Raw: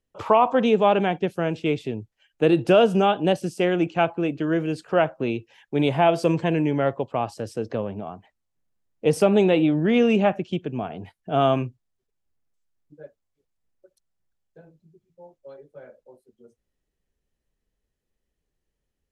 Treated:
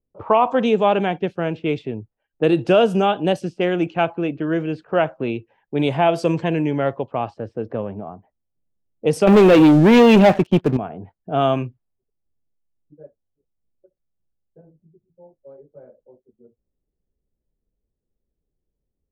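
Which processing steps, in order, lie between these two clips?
low-pass that shuts in the quiet parts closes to 540 Hz, open at −16 dBFS
0:09.27–0:10.77: leveller curve on the samples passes 3
level +1.5 dB

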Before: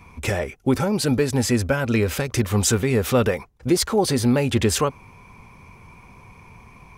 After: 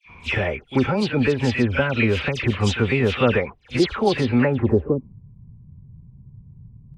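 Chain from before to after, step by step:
low-pass filter sweep 2,900 Hz → 140 Hz, 0:04.27–0:05.08
all-pass dispersion lows, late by 90 ms, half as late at 2,500 Hz
echo ahead of the sound 37 ms −17.5 dB

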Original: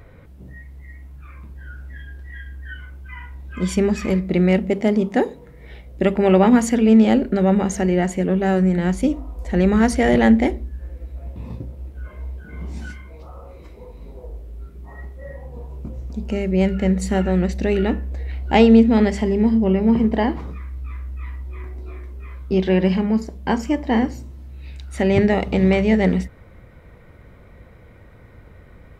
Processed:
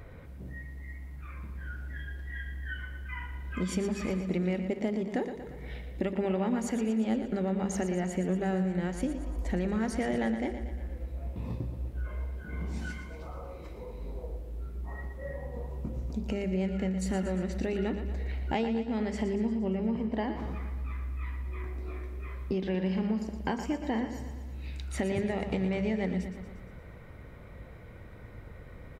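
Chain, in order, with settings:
downward compressor 6 to 1, threshold −26 dBFS, peak gain reduction 17.5 dB
repeating echo 117 ms, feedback 59%, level −9.5 dB
level −2.5 dB

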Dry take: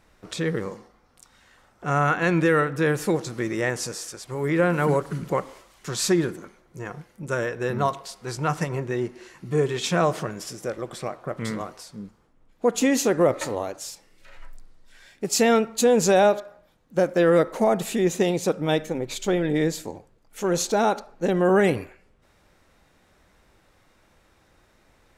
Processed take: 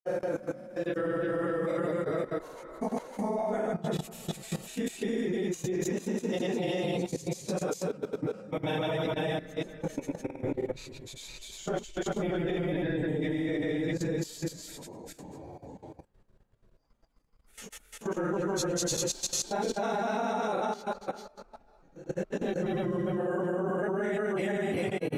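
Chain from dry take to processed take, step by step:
extreme stretch with random phases 5.3×, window 0.05 s, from 0:17.02
granular cloud, spray 346 ms, pitch spread up and down by 0 semitones
output level in coarse steps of 15 dB

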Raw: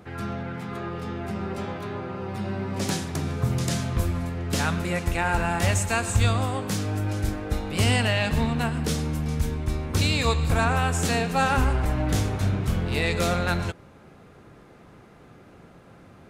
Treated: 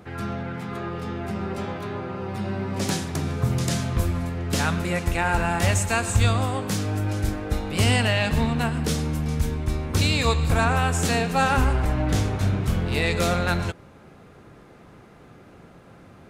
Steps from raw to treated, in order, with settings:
0:11.86–0:12.41: high-shelf EQ 10,000 Hz −7.5 dB
level +1.5 dB

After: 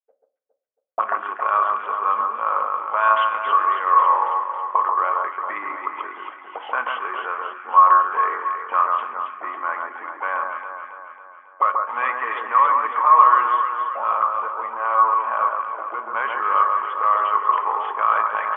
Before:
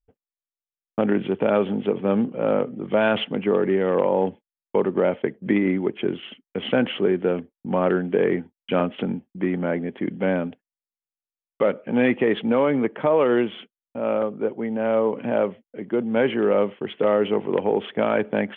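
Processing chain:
envelope filter 550–1,100 Hz, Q 15, up, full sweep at −22 dBFS
drawn EQ curve 110 Hz 0 dB, 160 Hz −24 dB, 300 Hz −9 dB, 1,200 Hz +14 dB
low-pass that shuts in the quiet parts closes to 2,200 Hz, open at −23 dBFS
in parallel at +1 dB: brickwall limiter −24 dBFS, peak gain reduction 11.5 dB
on the sum: low shelf with overshoot 160 Hz −12.5 dB, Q 3
delay that swaps between a low-pass and a high-pass 137 ms, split 1,600 Hz, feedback 74%, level −3 dB
on a send at −9.5 dB: convolution reverb RT60 0.40 s, pre-delay 5 ms
on the sum: level +5 dB

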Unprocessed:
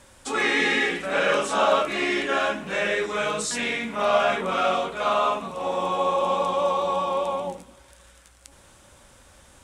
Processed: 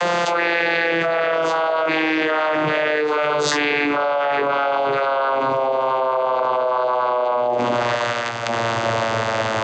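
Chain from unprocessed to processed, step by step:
vocoder with a gliding carrier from F3, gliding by −8 semitones
three-way crossover with the lows and the highs turned down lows −18 dB, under 440 Hz, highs −21 dB, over 5,600 Hz
envelope flattener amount 100%

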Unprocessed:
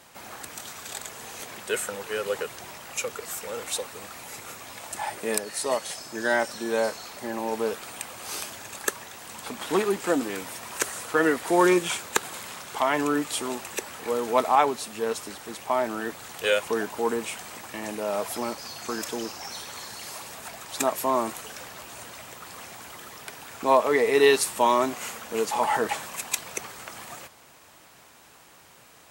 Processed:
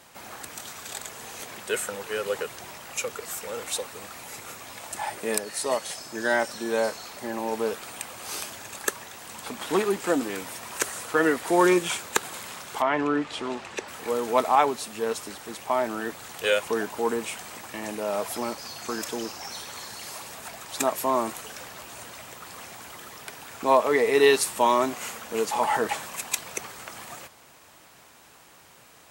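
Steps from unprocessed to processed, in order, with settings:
0:12.81–0:13.87: low-pass filter 2,700 Hz → 5,200 Hz 12 dB per octave

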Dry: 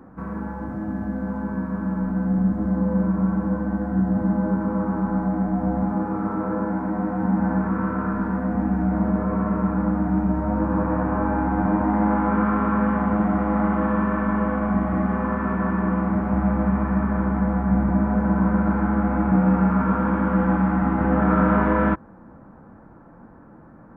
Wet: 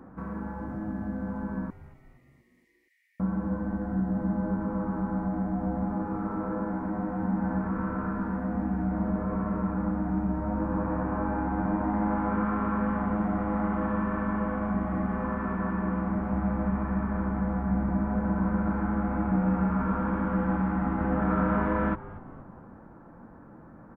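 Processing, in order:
in parallel at 0 dB: downward compressor, threshold −34 dBFS, peak gain reduction 18.5 dB
0:01.70–0:03.20: on the sum: linear-phase brick-wall high-pass 1,800 Hz
echo with shifted repeats 235 ms, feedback 52%, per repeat −110 Hz, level −17 dB
level −8.5 dB

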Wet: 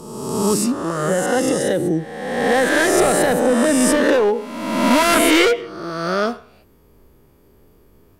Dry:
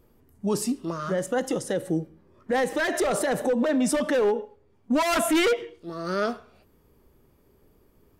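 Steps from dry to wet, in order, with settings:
peak hold with a rise ahead of every peak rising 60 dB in 1.34 s
level +5 dB

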